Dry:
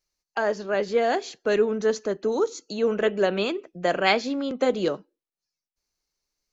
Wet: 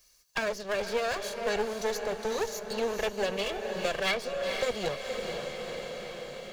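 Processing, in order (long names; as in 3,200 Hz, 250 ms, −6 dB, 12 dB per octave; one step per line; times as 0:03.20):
lower of the sound and its delayed copy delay 1.8 ms
high-shelf EQ 2,200 Hz +9 dB
feedback delay with all-pass diffusion 480 ms, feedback 47%, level −9 dB
multiband upward and downward compressor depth 70%
level −7.5 dB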